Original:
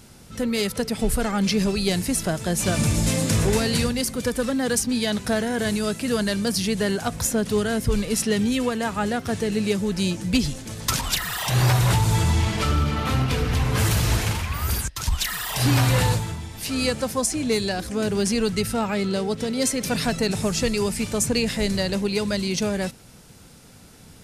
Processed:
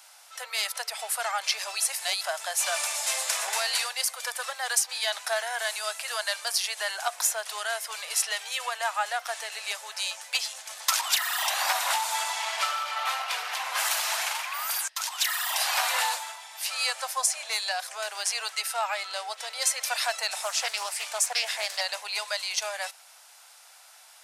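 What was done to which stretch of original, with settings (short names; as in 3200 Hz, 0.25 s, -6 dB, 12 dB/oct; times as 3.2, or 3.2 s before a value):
1.8–2.21 reverse
20.43–21.81 Doppler distortion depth 0.25 ms
whole clip: steep high-pass 660 Hz 48 dB/oct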